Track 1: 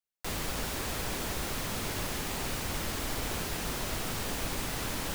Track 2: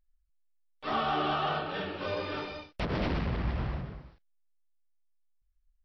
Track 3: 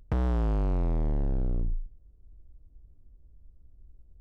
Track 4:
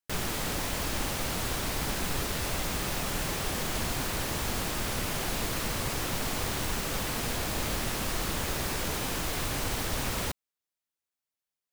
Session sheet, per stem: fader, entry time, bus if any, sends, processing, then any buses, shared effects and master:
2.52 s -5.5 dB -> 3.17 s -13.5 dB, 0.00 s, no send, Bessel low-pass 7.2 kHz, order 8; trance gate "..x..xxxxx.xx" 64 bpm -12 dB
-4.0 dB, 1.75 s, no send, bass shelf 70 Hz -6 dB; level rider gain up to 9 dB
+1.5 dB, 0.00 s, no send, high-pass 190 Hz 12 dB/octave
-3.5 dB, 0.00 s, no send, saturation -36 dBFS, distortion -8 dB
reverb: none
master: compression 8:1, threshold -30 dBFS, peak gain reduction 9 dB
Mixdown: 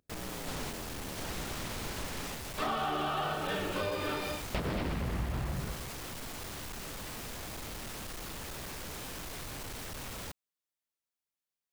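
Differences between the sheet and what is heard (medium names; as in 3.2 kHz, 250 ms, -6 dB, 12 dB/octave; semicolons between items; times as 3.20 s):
stem 2: missing bass shelf 70 Hz -6 dB; stem 3 +1.5 dB -> -10.5 dB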